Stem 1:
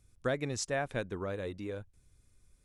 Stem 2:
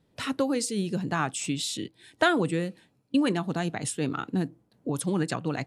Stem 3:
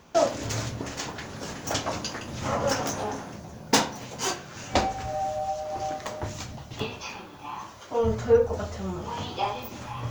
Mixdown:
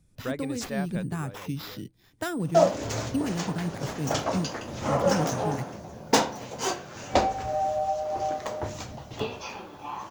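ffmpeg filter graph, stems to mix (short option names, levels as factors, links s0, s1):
-filter_complex "[0:a]volume=0.841,afade=t=out:st=0.85:d=0.44:silence=0.398107[s0];[1:a]bass=f=250:g=15,treble=f=4000:g=3,acrusher=samples=5:mix=1:aa=0.000001,volume=0.282[s1];[2:a]equalizer=f=550:w=0.77:g=6,adelay=2400,volume=0.75[s2];[s0][s1][s2]amix=inputs=3:normalize=0"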